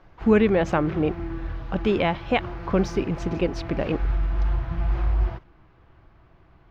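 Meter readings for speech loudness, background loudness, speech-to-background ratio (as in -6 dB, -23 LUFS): -24.5 LUFS, -31.0 LUFS, 6.5 dB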